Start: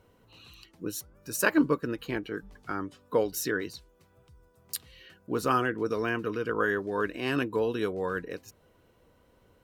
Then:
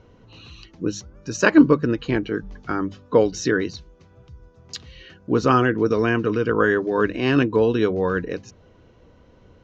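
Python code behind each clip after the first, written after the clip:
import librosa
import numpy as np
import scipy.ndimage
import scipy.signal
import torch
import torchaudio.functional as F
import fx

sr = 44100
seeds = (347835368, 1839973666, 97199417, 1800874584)

y = scipy.signal.sosfilt(scipy.signal.ellip(4, 1.0, 40, 6500.0, 'lowpass', fs=sr, output='sos'), x)
y = fx.low_shelf(y, sr, hz=370.0, db=8.5)
y = fx.hum_notches(y, sr, base_hz=50, count=4)
y = y * librosa.db_to_amplitude(7.0)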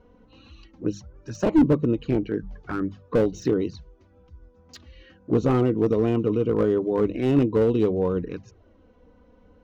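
y = fx.high_shelf(x, sr, hz=2100.0, db=-10.0)
y = fx.env_flanger(y, sr, rest_ms=4.4, full_db=-19.0)
y = fx.slew_limit(y, sr, full_power_hz=71.0)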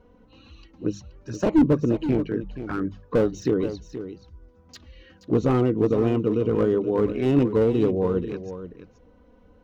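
y = x + 10.0 ** (-11.5 / 20.0) * np.pad(x, (int(476 * sr / 1000.0), 0))[:len(x)]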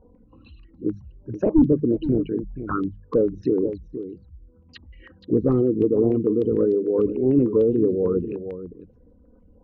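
y = fx.envelope_sharpen(x, sr, power=2.0)
y = fx.filter_held_lowpass(y, sr, hz=6.7, low_hz=900.0, high_hz=4300.0)
y = y * librosa.db_to_amplitude(1.0)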